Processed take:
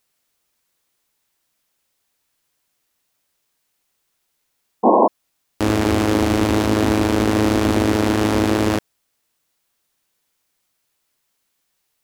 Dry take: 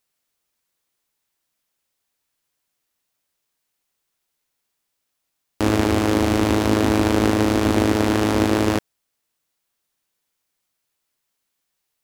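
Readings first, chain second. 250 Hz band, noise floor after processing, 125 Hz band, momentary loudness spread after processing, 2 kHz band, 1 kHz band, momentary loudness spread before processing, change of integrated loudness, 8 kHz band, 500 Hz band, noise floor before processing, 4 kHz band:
+1.5 dB, -72 dBFS, +1.0 dB, 3 LU, +1.0 dB, +4.5 dB, 3 LU, +1.0 dB, +1.0 dB, +2.5 dB, -77 dBFS, +1.0 dB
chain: limiter -11.5 dBFS, peak gain reduction 8 dB; painted sound noise, 4.83–5.08, 200–1100 Hz -18 dBFS; gain +5.5 dB

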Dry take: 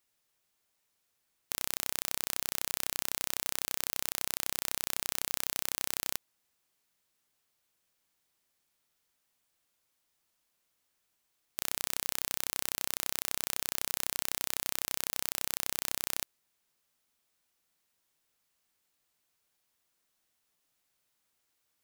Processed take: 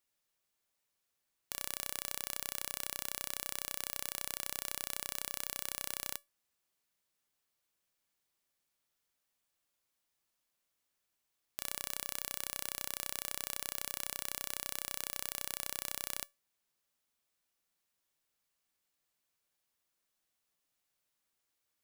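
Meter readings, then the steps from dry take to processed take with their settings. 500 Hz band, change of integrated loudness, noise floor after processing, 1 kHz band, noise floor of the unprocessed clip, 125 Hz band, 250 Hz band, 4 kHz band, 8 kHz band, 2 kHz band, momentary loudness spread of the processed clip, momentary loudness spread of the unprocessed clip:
-5.0 dB, -5.5 dB, -84 dBFS, -5.5 dB, -79 dBFS, -6.0 dB, -6.0 dB, -5.5 dB, -5.5 dB, -5.5 dB, 2 LU, 2 LU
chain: resonator 570 Hz, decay 0.22 s, harmonics all, mix 50%

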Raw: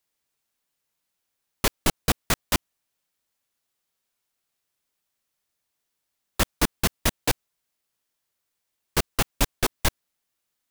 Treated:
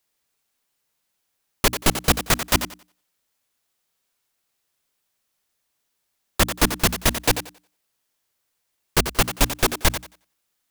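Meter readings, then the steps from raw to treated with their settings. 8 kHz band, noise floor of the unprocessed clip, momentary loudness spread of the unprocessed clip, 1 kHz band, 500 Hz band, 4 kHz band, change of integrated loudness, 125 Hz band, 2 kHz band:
+5.0 dB, -80 dBFS, 4 LU, +5.0 dB, +5.0 dB, +5.0 dB, +5.0 dB, +4.0 dB, +5.0 dB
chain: notches 60/120/180/240/300 Hz; on a send: thinning echo 90 ms, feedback 22%, high-pass 180 Hz, level -9.5 dB; on the sum: gain +4.5 dB

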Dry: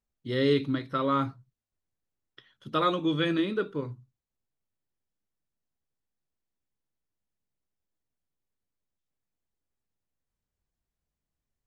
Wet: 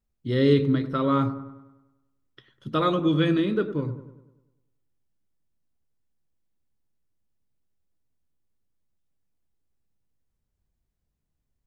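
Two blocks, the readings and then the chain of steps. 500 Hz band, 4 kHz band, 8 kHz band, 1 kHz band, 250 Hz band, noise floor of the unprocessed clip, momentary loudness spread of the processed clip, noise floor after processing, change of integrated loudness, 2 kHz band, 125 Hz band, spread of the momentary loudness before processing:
+4.0 dB, 0.0 dB, n/a, +1.0 dB, +5.5 dB, under -85 dBFS, 11 LU, -79 dBFS, +4.5 dB, +0.5 dB, +8.5 dB, 9 LU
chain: low shelf 350 Hz +9 dB; on a send: dark delay 99 ms, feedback 51%, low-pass 1300 Hz, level -11 dB

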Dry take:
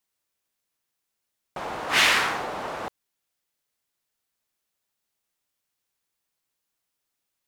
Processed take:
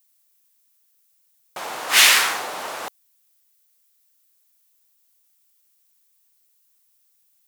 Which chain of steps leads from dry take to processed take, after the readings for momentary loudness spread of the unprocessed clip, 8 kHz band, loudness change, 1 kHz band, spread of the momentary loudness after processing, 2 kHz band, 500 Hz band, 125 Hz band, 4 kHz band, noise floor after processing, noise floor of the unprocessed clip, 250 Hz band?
19 LU, +12.5 dB, +5.5 dB, +1.5 dB, 22 LU, +4.0 dB, -1.0 dB, n/a, +7.5 dB, -64 dBFS, -82 dBFS, -4.5 dB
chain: RIAA curve recording; gain +1.5 dB

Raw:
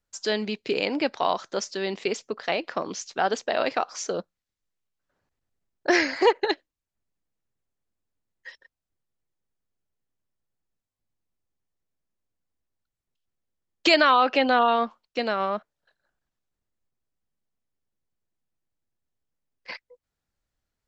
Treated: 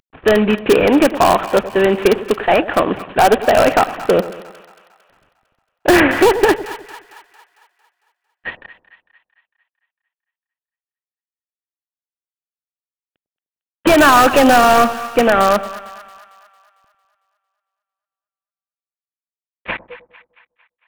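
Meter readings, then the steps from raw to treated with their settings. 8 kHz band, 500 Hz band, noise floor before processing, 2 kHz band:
+10.5 dB, +12.5 dB, under -85 dBFS, +10.0 dB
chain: CVSD 16 kbps; in parallel at -8.5 dB: wrapped overs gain 19 dB; on the sum: wow and flutter 18 cents; notch 2100 Hz, Q 12; on a send: split-band echo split 850 Hz, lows 0.101 s, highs 0.226 s, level -15 dB; on the sum: maximiser +15 dB; gain -1 dB

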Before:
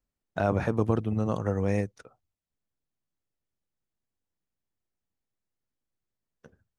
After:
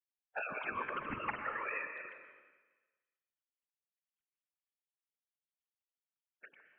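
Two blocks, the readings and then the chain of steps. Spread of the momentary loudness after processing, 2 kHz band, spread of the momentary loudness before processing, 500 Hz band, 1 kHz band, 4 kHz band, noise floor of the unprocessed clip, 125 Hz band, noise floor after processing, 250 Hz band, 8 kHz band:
19 LU, +2.0 dB, 6 LU, -17.5 dB, -4.5 dB, -4.0 dB, under -85 dBFS, -29.5 dB, under -85 dBFS, -22.0 dB, under -20 dB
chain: sine-wave speech; spectral gate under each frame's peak -15 dB weak; compressor, threshold -47 dBFS, peak gain reduction 12 dB; whisperiser; plate-style reverb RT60 1.3 s, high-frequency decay 1×, pre-delay 0.11 s, DRR 5.5 dB; gain +10 dB

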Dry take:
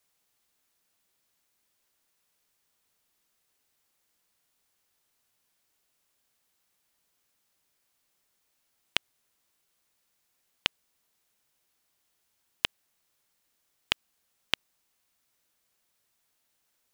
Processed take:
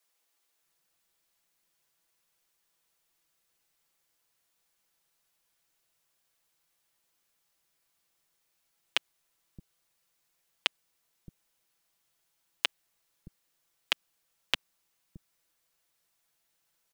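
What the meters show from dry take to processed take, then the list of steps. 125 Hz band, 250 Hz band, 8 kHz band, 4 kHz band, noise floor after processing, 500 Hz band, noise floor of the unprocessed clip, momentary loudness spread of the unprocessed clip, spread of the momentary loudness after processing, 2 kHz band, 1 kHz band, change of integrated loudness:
-2.5 dB, -3.0 dB, -1.0 dB, -1.0 dB, -77 dBFS, -1.5 dB, -76 dBFS, 0 LU, 0 LU, -1.0 dB, -1.5 dB, -1.0 dB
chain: comb 6 ms, depth 47%; bands offset in time highs, lows 0.62 s, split 240 Hz; gain -2 dB

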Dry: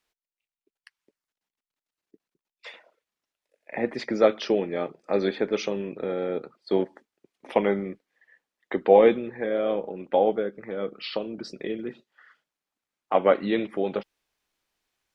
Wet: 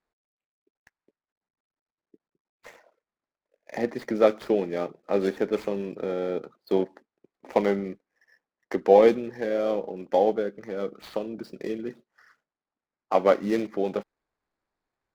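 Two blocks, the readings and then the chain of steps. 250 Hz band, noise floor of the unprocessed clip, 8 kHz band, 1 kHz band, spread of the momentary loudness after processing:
0.0 dB, under -85 dBFS, n/a, -0.5 dB, 13 LU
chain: median filter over 15 samples

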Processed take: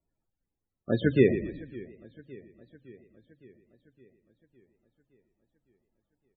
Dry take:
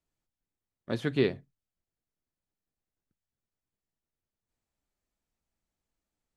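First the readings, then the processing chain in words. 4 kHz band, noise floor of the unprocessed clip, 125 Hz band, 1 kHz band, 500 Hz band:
-4.0 dB, under -85 dBFS, +6.0 dB, n/a, +5.5 dB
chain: frequency-shifting echo 0.118 s, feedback 43%, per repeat -34 Hz, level -10 dB; loudest bins only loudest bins 32; warbling echo 0.562 s, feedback 61%, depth 130 cents, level -21 dB; gain +5.5 dB

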